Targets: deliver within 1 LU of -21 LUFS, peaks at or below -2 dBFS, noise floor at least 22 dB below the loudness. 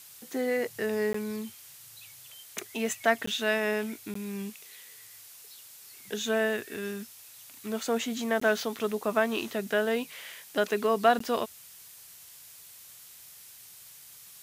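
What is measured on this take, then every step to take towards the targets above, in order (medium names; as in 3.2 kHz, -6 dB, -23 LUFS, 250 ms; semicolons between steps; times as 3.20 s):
dropouts 5; longest dropout 14 ms; noise floor -51 dBFS; noise floor target -52 dBFS; loudness -30.0 LUFS; peak level -9.0 dBFS; loudness target -21.0 LUFS
-> interpolate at 1.13/3.26/4.14/8.40/11.19 s, 14 ms; noise reduction 6 dB, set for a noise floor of -51 dBFS; trim +9 dB; peak limiter -2 dBFS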